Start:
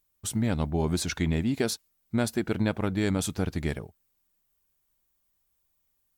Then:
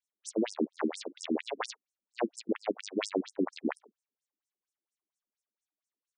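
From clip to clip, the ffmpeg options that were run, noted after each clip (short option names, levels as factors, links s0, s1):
-af "bandreject=f=4900:w=12,aeval=exprs='0.251*(cos(1*acos(clip(val(0)/0.251,-1,1)))-cos(1*PI/2))+0.0112*(cos(5*acos(clip(val(0)/0.251,-1,1)))-cos(5*PI/2))+0.0562*(cos(7*acos(clip(val(0)/0.251,-1,1)))-cos(7*PI/2))+0.0178*(cos(8*acos(clip(val(0)/0.251,-1,1)))-cos(8*PI/2))':c=same,afftfilt=real='re*between(b*sr/1024,260*pow(7300/260,0.5+0.5*sin(2*PI*4.3*pts/sr))/1.41,260*pow(7300/260,0.5+0.5*sin(2*PI*4.3*pts/sr))*1.41)':imag='im*between(b*sr/1024,260*pow(7300/260,0.5+0.5*sin(2*PI*4.3*pts/sr))/1.41,260*pow(7300/260,0.5+0.5*sin(2*PI*4.3*pts/sr))*1.41)':win_size=1024:overlap=0.75,volume=1.68"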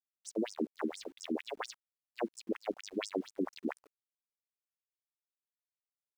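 -af "aeval=exprs='val(0)*gte(abs(val(0)),0.00188)':c=same,volume=0.596"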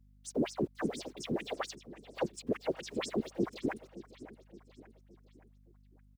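-af "afftfilt=real='hypot(re,im)*cos(2*PI*random(0))':imag='hypot(re,im)*sin(2*PI*random(1))':win_size=512:overlap=0.75,aecho=1:1:569|1138|1707|2276:0.158|0.0745|0.035|0.0165,aeval=exprs='val(0)+0.000355*(sin(2*PI*50*n/s)+sin(2*PI*2*50*n/s)/2+sin(2*PI*3*50*n/s)/3+sin(2*PI*4*50*n/s)/4+sin(2*PI*5*50*n/s)/5)':c=same,volume=2.66"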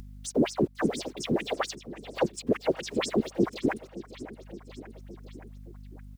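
-af "acompressor=mode=upward:threshold=0.00708:ratio=2.5,volume=2.37"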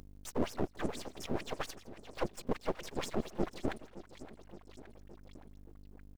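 -af "aeval=exprs='max(val(0),0)':c=same,aecho=1:1:164:0.0841,volume=0.562"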